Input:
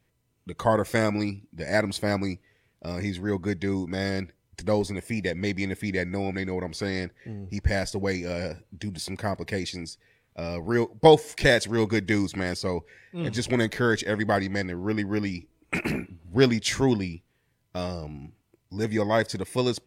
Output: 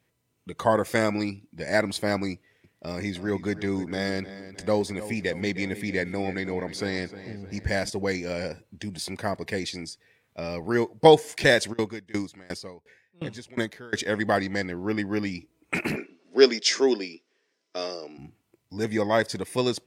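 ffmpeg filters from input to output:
-filter_complex "[0:a]asettb=1/sr,asplit=3[a][b][c];[a]atrim=end=2.334[d];[b]atrim=start=2.33:end=7.9,asetpts=PTS-STARTPTS,afade=t=in:d=0.004:c=qsin,afade=t=out:st=5.566:d=0.004:c=qsin,asplit=2[e][f];[f]adelay=309,lowpass=f=4.7k:p=1,volume=-14dB,asplit=2[g][h];[h]adelay=309,lowpass=f=4.7k:p=1,volume=0.5,asplit=2[i][j];[j]adelay=309,lowpass=f=4.7k:p=1,volume=0.5,asplit=2[k][l];[l]adelay=309,lowpass=f=4.7k:p=1,volume=0.5,asplit=2[m][n];[n]adelay=309,lowpass=f=4.7k:p=1,volume=0.5[o];[e][g][i][k][m][o]amix=inputs=6:normalize=0,atrim=end_sample=245637[p];[c]atrim=start=7.896[q];[d][p]acrossfade=d=0.004:c1=hsin:c2=qsin[r];[r][q]acrossfade=d=0.004:c1=qsin:c2=hsin,asplit=3[s][t][u];[s]afade=t=out:st=11.72:d=0.02[v];[t]aeval=exprs='val(0)*pow(10,-26*if(lt(mod(2.8*n/s,1),2*abs(2.8)/1000),1-mod(2.8*n/s,1)/(2*abs(2.8)/1000),(mod(2.8*n/s,1)-2*abs(2.8)/1000)/(1-2*abs(2.8)/1000))/20)':c=same,afade=t=in:st=11.72:d=0.02,afade=t=out:st=13.93:d=0.02[w];[u]afade=t=in:st=13.93:d=0.02[x];[v][w][x]amix=inputs=3:normalize=0,asplit=3[y][z][aa];[y]afade=t=out:st=15.95:d=0.02[ab];[z]highpass=f=280:w=0.5412,highpass=f=280:w=1.3066,equalizer=f=410:t=q:w=4:g=5,equalizer=f=880:t=q:w=4:g=-6,equalizer=f=5.3k:t=q:w=4:g=10,lowpass=f=7.5k:w=0.5412,lowpass=f=7.5k:w=1.3066,afade=t=in:st=15.95:d=0.02,afade=t=out:st=18.17:d=0.02[ac];[aa]afade=t=in:st=18.17:d=0.02[ad];[ab][ac][ad]amix=inputs=3:normalize=0,highpass=f=160:p=1,volume=1dB"

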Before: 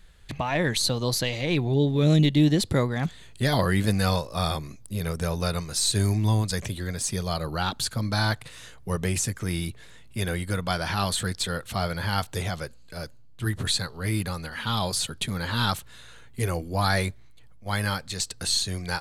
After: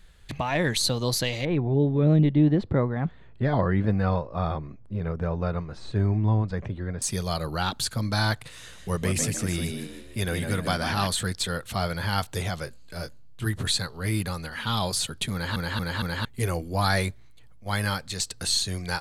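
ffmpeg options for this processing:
-filter_complex "[0:a]asettb=1/sr,asplit=3[a][b][c];[a]atrim=end=1.454[d];[b]atrim=start=1.45:end=7.02,asetpts=PTS-STARTPTS,afade=t=in:d=0.004:c=qsin,afade=t=out:st=5.566:d=0.004:c=qsin,lowpass=1.4k[e];[c]atrim=start=7.016[f];[d][e]acrossfade=d=0.004:c1=hsin:c2=qsin[g];[g][f]acrossfade=d=0.004:c1=qsin:c2=hsin,asettb=1/sr,asplit=3[h][i][j];[h]atrim=end=8.494[k];[i]atrim=start=8.49:end=11.07,asetpts=PTS-STARTPTS,afade=t=in:d=0.004:c=qsin,afade=t=out:st=2.576:d=0.004:c=qsin,asplit=6[l][m][n][o][p][q];[m]adelay=154,afreqshift=64,volume=-6dB[r];[n]adelay=308,afreqshift=128,volume=-14.4dB[s];[o]adelay=462,afreqshift=192,volume=-22.8dB[t];[p]adelay=616,afreqshift=256,volume=-31.2dB[u];[q]adelay=770,afreqshift=320,volume=-39.6dB[v];[l][r][s][t][u][v]amix=inputs=6:normalize=0,atrim=end_sample=113778[w];[j]atrim=start=11.066[x];[k][w]acrossfade=d=0.004:c1=hsin:c2=qsin[y];[y][x]acrossfade=d=0.004:c1=qsin:c2=hsin,asettb=1/sr,asplit=3[z][aa][ab];[z]atrim=end=12.654[ac];[aa]atrim=start=12.65:end=13.46,asetpts=PTS-STARTPTS,afade=t=in:d=0.004:c=qsin,afade=t=out:st=0.806:d=0.004:c=qsin,asplit=2[ad][ae];[ae]adelay=22,volume=-7dB[af];[ad][af]amix=inputs=2:normalize=0,atrim=end_sample=35721[ag];[ab]atrim=start=13.456[ah];[ac][ag]acrossfade=d=0.004:c1=hsin:c2=qsin[ai];[ai][ah]acrossfade=d=0.004:c1=qsin:c2=hsin,asplit=5[aj][ak][al][am][an];[aj]atrim=end=15.562[ao];[ak]atrim=start=15.328:end=15.562[ap];[al]atrim=start=15.328:end=15.562[aq];[am]atrim=start=15.328:end=15.562[ar];[an]atrim=start=16.248[as];[ao][ap]acrossfade=d=0.004:c1=hsin:c2=hsin[at];[at][aq]acrossfade=d=0.004:c1=hsin:c2=hsin[au];[au][ar]acrossfade=d=0.004:c1=hsin:c2=hsin[av];[av][as]acrossfade=d=0.004:c1=hsin:c2=hsin"

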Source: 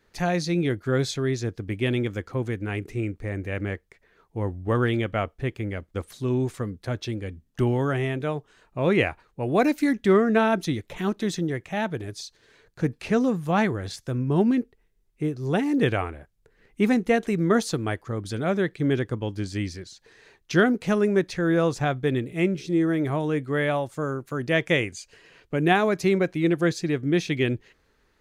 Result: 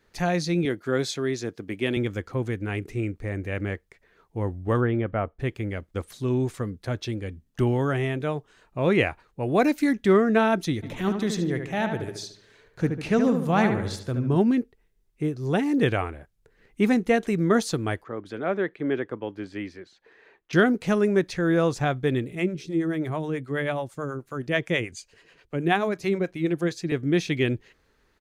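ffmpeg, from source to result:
-filter_complex "[0:a]asettb=1/sr,asplit=3[a][b][c];[a]atrim=end=0.654[d];[b]atrim=start=0.65:end=1.97,asetpts=PTS-STARTPTS,afade=t=in:d=0.004:c=qsin,afade=t=out:st=1.316:d=0.004:c=qsin,highpass=190[e];[c]atrim=start=1.966[f];[d][e]acrossfade=d=0.004:c1=hsin:c2=qsin[g];[g][f]acrossfade=d=0.004:c1=qsin:c2=hsin,asplit=3[h][i][j];[h]afade=t=out:st=4.8:d=0.02[k];[i]lowpass=1.5k,afade=t=in:st=4.8:d=0.02,afade=t=out:st=5.38:d=0.02[l];[j]afade=t=in:st=5.38:d=0.02[m];[k][l][m]amix=inputs=3:normalize=0,asplit=3[n][o][p];[n]afade=t=out:st=10.82:d=0.02[q];[o]asplit=2[r][s];[s]adelay=74,lowpass=f=2.9k:p=1,volume=-6dB,asplit=2[t][u];[u]adelay=74,lowpass=f=2.9k:p=1,volume=0.48,asplit=2[v][w];[w]adelay=74,lowpass=f=2.9k:p=1,volume=0.48,asplit=2[x][y];[y]adelay=74,lowpass=f=2.9k:p=1,volume=0.48,asplit=2[z][aa];[aa]adelay=74,lowpass=f=2.9k:p=1,volume=0.48,asplit=2[ab][ac];[ac]adelay=74,lowpass=f=2.9k:p=1,volume=0.48[ad];[r][t][v][x][z][ab][ad]amix=inputs=7:normalize=0,afade=t=in:st=10.82:d=0.02,afade=t=out:st=14.36:d=0.02[ae];[p]afade=t=in:st=14.36:d=0.02[af];[q][ae][af]amix=inputs=3:normalize=0,asettb=1/sr,asplit=3[ag][ah][ai];[ag]atrim=end=18.044[aj];[ah]atrim=start=18.04:end=20.53,asetpts=PTS-STARTPTS,afade=t=in:d=0.004:c=qsin,afade=t=out:st=2.486:d=0.004:c=qsin,acrossover=split=240 2900:gain=0.158 1 0.112[ak][al][am];[ak][al][am]amix=inputs=3:normalize=0[an];[ai]atrim=start=20.526[ao];[aj][an]acrossfade=d=0.004:c1=hsin:c2=qsin[ap];[ap][ao]acrossfade=d=0.004:c1=qsin:c2=hsin,asettb=1/sr,asplit=3[aq][ar][as];[aq]atrim=end=22.354[at];[ar]atrim=start=22.35:end=26.92,asetpts=PTS-STARTPTS,afade=t=in:d=0.004:c=qsin,afade=t=out:st=4.566:d=0.004:c=qsin,acrossover=split=460[au][av];[au]aeval=exprs='val(0)*(1-0.7/2+0.7/2*cos(2*PI*9.3*n/s))':c=same[aw];[av]aeval=exprs='val(0)*(1-0.7/2-0.7/2*cos(2*PI*9.3*n/s))':c=same[ax];[aw][ax]amix=inputs=2:normalize=0[ay];[as]atrim=start=26.916[az];[at][ay]acrossfade=d=0.004:c1=hsin:c2=qsin[ba];[ba][az]acrossfade=d=0.004:c1=qsin:c2=hsin"

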